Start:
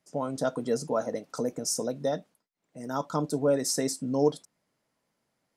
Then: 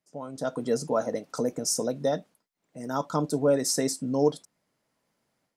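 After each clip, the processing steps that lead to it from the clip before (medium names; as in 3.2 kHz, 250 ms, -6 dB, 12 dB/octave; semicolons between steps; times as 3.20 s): level rider gain up to 10.5 dB; trim -8 dB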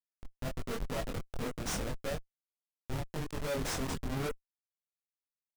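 Schmitt trigger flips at -26 dBFS; chorus voices 4, 0.88 Hz, delay 23 ms, depth 3.9 ms; trim -2.5 dB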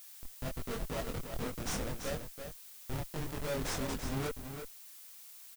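delay 335 ms -8 dB; added noise blue -51 dBFS; trim -1.5 dB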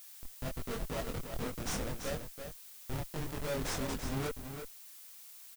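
no audible change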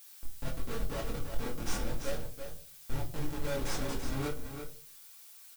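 reverberation RT60 0.35 s, pre-delay 4 ms, DRR 0 dB; trim -3 dB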